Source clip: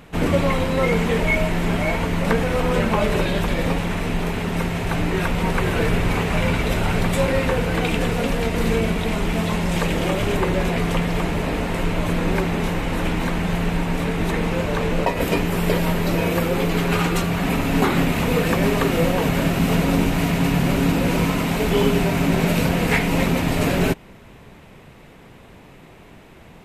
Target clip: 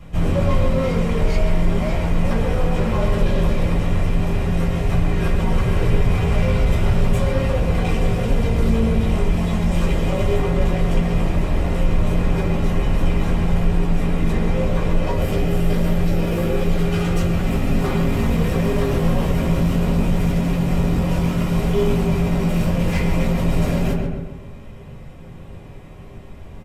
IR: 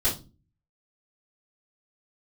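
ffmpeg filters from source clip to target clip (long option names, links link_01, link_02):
-filter_complex "[0:a]asplit=2[link_01][link_02];[link_02]adelay=133,lowpass=frequency=2400:poles=1,volume=-6.5dB,asplit=2[link_03][link_04];[link_04]adelay=133,lowpass=frequency=2400:poles=1,volume=0.47,asplit=2[link_05][link_06];[link_06]adelay=133,lowpass=frequency=2400:poles=1,volume=0.47,asplit=2[link_07][link_08];[link_08]adelay=133,lowpass=frequency=2400:poles=1,volume=0.47,asplit=2[link_09][link_10];[link_10]adelay=133,lowpass=frequency=2400:poles=1,volume=0.47,asplit=2[link_11][link_12];[link_12]adelay=133,lowpass=frequency=2400:poles=1,volume=0.47[link_13];[link_01][link_03][link_05][link_07][link_09][link_11][link_13]amix=inputs=7:normalize=0,asoftclip=type=tanh:threshold=-20dB,asettb=1/sr,asplit=3[link_14][link_15][link_16];[link_14]atrim=end=15.164[link_17];[link_15]atrim=start=15.16:end=17.79,asetpts=PTS-STARTPTS,afade=type=in:duration=0.004:curve=qsin,afade=type=out:start_time=2.626:duration=0.004:curve=qsin,bandreject=frequency=1000:width=6.4[link_18];[link_16]atrim=start=17.786[link_19];[link_17][link_18]acrossfade=duration=0.004:curve1=hsin:curve2=qsin[link_20];[link_20][link_19]acrossfade=duration=0.004:curve1=qsin:curve2=hsin[link_21];[1:a]atrim=start_sample=2205,asetrate=70560,aresample=44100[link_22];[link_21][link_22]afir=irnorm=-1:irlink=0,volume=-8dB"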